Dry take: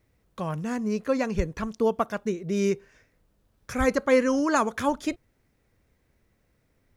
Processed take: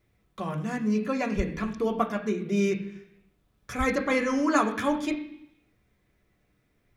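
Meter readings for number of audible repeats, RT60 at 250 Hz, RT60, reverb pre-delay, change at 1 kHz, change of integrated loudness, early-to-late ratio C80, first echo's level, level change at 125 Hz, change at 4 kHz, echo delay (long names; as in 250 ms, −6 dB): no echo audible, 0.85 s, 0.70 s, 3 ms, −0.5 dB, −1.0 dB, 12.0 dB, no echo audible, 0.0 dB, 0.0 dB, no echo audible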